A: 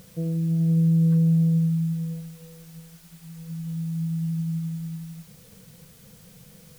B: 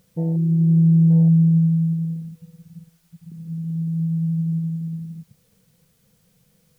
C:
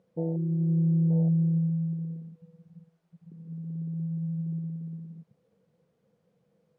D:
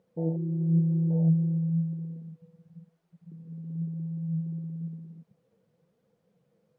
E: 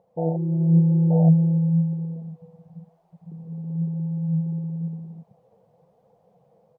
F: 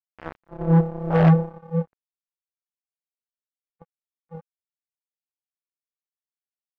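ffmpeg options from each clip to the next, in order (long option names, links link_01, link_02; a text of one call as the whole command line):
ffmpeg -i in.wav -af "afwtdn=0.0355,volume=5dB" out.wav
ffmpeg -i in.wav -af "bandpass=frequency=480:width_type=q:width=1.1:csg=0" out.wav
ffmpeg -i in.wav -af "flanger=delay=2.1:depth=7.6:regen=61:speed=0.98:shape=triangular,volume=4dB" out.wav
ffmpeg -i in.wav -af "firequalizer=gain_entry='entry(120,0);entry(270,-7);entry(740,13);entry(1400,-8)':delay=0.05:min_phase=1,dynaudnorm=framelen=140:gausssize=5:maxgain=5dB,volume=4dB" out.wav
ffmpeg -i in.wav -af "highpass=180,aphaser=in_gain=1:out_gain=1:delay=1.1:decay=0.33:speed=1.6:type=sinusoidal,acrusher=bits=2:mix=0:aa=0.5" out.wav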